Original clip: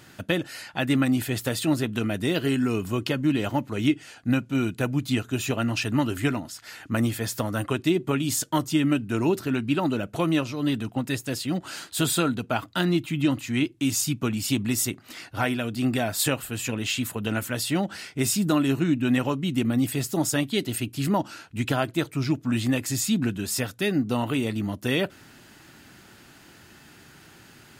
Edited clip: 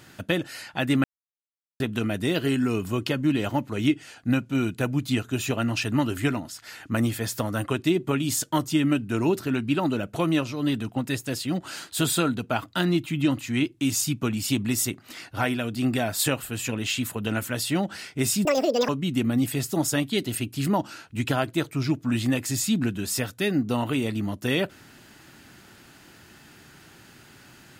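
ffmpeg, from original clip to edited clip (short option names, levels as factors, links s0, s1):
-filter_complex "[0:a]asplit=5[s0][s1][s2][s3][s4];[s0]atrim=end=1.04,asetpts=PTS-STARTPTS,afade=t=out:st=1.036:d=0.004:c=hsin[s5];[s1]atrim=start=1.04:end=1.8,asetpts=PTS-STARTPTS,volume=0[s6];[s2]atrim=start=1.8:end=18.454,asetpts=PTS-STARTPTS,afade=t=in:d=0.004:c=hsin[s7];[s3]atrim=start=18.45:end=19.29,asetpts=PTS-STARTPTS,asetrate=85113,aresample=44100[s8];[s4]atrim=start=19.286[s9];[s5][s6][s7]concat=n=3:v=0:a=1[s10];[s10][s8]acrossfade=d=0.004:c1=hsin:c2=hsin[s11];[s11][s9]acrossfade=d=0.004:c1=hsin:c2=hsin"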